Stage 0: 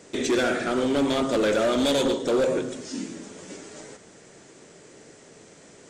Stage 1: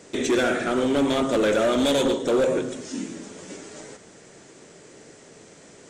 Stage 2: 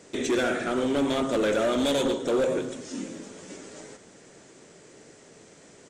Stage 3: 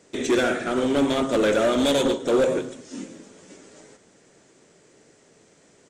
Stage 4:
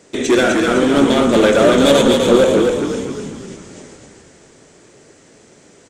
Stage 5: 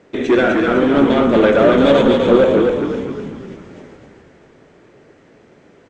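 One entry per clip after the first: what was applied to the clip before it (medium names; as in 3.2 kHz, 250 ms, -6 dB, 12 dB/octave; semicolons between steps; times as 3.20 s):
dynamic bell 4.7 kHz, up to -6 dB, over -52 dBFS, Q 3.7; trim +1.5 dB
feedback delay 637 ms, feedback 39%, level -23.5 dB; trim -3.5 dB
upward expansion 1.5:1, over -41 dBFS; trim +5 dB
frequency-shifting echo 253 ms, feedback 47%, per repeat -34 Hz, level -4 dB; trim +7.5 dB
low-pass 2.5 kHz 12 dB/octave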